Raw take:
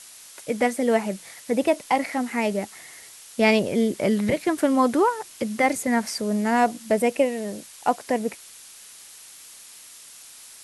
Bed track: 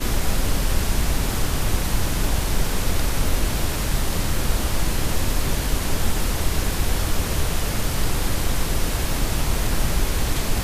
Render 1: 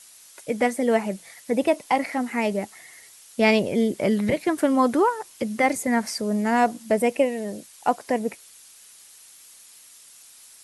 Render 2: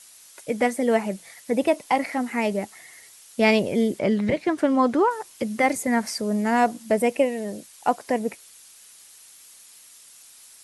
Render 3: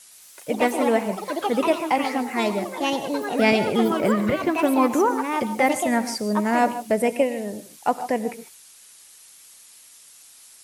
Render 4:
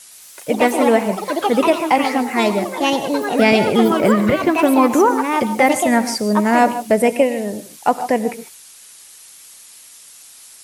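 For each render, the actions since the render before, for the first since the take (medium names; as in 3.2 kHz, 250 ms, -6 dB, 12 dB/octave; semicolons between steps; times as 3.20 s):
noise reduction 6 dB, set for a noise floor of -46 dBFS
3.99–5.11 s: distance through air 71 m
ever faster or slower copies 113 ms, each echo +4 st, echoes 3, each echo -6 dB; gated-style reverb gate 170 ms rising, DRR 11.5 dB
trim +6.5 dB; peak limiter -3 dBFS, peak gain reduction 2.5 dB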